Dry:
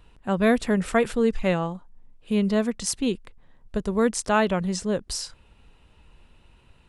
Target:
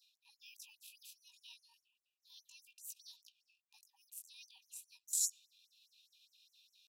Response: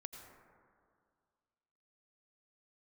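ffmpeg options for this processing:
-filter_complex "[0:a]acrossover=split=390|3000[s0][s1][s2];[s1]acompressor=threshold=0.0178:ratio=3[s3];[s0][s3][s2]amix=inputs=3:normalize=0,tiltshelf=f=680:g=-7,asplit=2[s4][s5];[1:a]atrim=start_sample=2205,lowpass=3300[s6];[s5][s6]afir=irnorm=-1:irlink=0,volume=0.282[s7];[s4][s7]amix=inputs=2:normalize=0,asetrate=62367,aresample=44100,atempo=0.707107,areverse,acompressor=threshold=0.0126:ratio=10,areverse,flanger=delay=18:depth=6.2:speed=0.33,afftfilt=real='re*(1-between(b*sr/4096,300,2400))':imag='im*(1-between(b*sr/4096,300,2400))':win_size=4096:overlap=0.75,afwtdn=0.00447,highshelf=f=8100:g=-2.5,afftfilt=real='re*gte(b*sr/1024,740*pow(5900/740,0.5+0.5*sin(2*PI*4.9*pts/sr)))':imag='im*gte(b*sr/1024,740*pow(5900/740,0.5+0.5*sin(2*PI*4.9*pts/sr)))':win_size=1024:overlap=0.75,volume=3.98"

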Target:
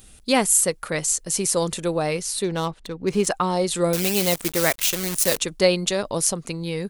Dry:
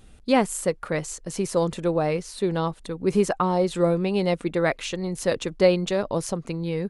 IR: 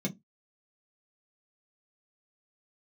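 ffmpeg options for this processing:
-filter_complex "[0:a]asettb=1/sr,asplit=3[s0][s1][s2];[s0]atrim=end=2.444[s3];[s1]atrim=start=2.44:end=3.27,asetpts=PTS-STARTPTS,afade=t=in:d=0.004:c=qsin,afade=t=out:st=0.826:d=0.004:c=qsin,adynamicsmooth=sensitivity=4.5:basefreq=3000[s4];[s2]atrim=start=3.266[s5];[s3][s4]acrossfade=d=0.004:c1=hsin:c2=qsin[s6];[s6][s5]acrossfade=d=0.004:c1=qsin:c2=hsin,asettb=1/sr,asplit=3[s7][s8][s9];[s7]atrim=end=3.934[s10];[s8]atrim=start=3.93:end=5.38,asetpts=PTS-STARTPTS,afade=t=in:d=0.004:c=qsin,afade=t=out:st=1.446:d=0.004:c=qsin,acrusher=bits=6:dc=4:mix=0:aa=0.000001[s11];[s9]atrim=start=5.376[s12];[s10][s11]acrossfade=d=0.004:c1=hsin:c2=qsin[s13];[s13][s12]acrossfade=d=0.004:c1=qsin:c2=hsin,crystalizer=i=4.5:c=0,volume=0.891"

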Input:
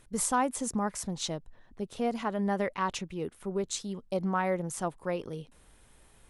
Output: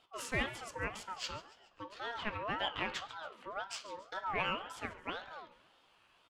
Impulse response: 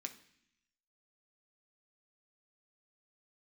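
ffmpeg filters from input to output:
-filter_complex "[0:a]equalizer=f=125:t=o:w=1:g=8,equalizer=f=250:t=o:w=1:g=-9,equalizer=f=2000:t=o:w=1:g=11,equalizer=f=4000:t=o:w=1:g=4,equalizer=f=8000:t=o:w=1:g=-5[s0];[1:a]atrim=start_sample=2205,afade=t=out:st=0.17:d=0.01,atrim=end_sample=7938[s1];[s0][s1]afir=irnorm=-1:irlink=0,acrossover=split=410[s2][s3];[s3]adynamicsmooth=sensitivity=7:basefreq=7800[s4];[s2][s4]amix=inputs=2:normalize=0,highshelf=f=8200:g=-4.5,asplit=2[s5][s6];[s6]asplit=4[s7][s8][s9][s10];[s7]adelay=140,afreqshift=59,volume=0.133[s11];[s8]adelay=280,afreqshift=118,volume=0.0624[s12];[s9]adelay=420,afreqshift=177,volume=0.0295[s13];[s10]adelay=560,afreqshift=236,volume=0.0138[s14];[s11][s12][s13][s14]amix=inputs=4:normalize=0[s15];[s5][s15]amix=inputs=2:normalize=0,aeval=exprs='val(0)*sin(2*PI*940*n/s+940*0.25/1.9*sin(2*PI*1.9*n/s))':c=same,volume=0.794"

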